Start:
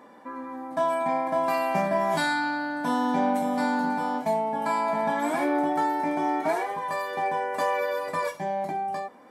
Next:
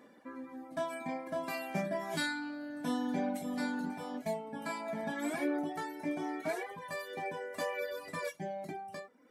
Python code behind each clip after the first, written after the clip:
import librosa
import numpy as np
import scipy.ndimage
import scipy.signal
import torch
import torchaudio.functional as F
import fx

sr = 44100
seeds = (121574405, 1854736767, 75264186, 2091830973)

y = fx.dereverb_blind(x, sr, rt60_s=1.0)
y = fx.peak_eq(y, sr, hz=920.0, db=-11.5, octaves=0.86)
y = y * librosa.db_to_amplitude(-4.0)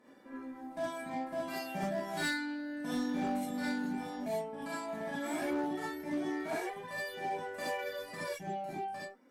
y = fx.rev_gated(x, sr, seeds[0], gate_ms=90, shape='rising', drr_db=-7.5)
y = fx.cheby_harmonics(y, sr, harmonics=(8,), levels_db=(-30,), full_scale_db=-21.0)
y = y * librosa.db_to_amplitude(-7.5)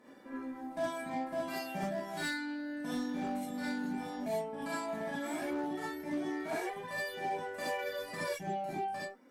y = fx.rider(x, sr, range_db=3, speed_s=0.5)